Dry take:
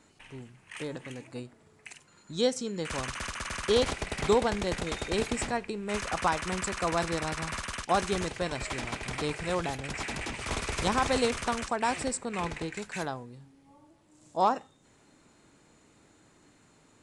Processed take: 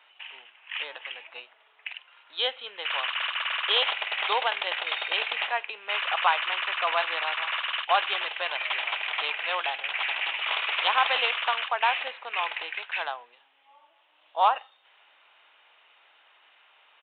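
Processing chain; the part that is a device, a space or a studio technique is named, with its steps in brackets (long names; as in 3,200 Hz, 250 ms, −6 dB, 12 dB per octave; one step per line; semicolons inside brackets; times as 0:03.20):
musical greeting card (downsampling to 8,000 Hz; high-pass filter 710 Hz 24 dB per octave; parametric band 2,900 Hz +10 dB 0.57 octaves)
level +5 dB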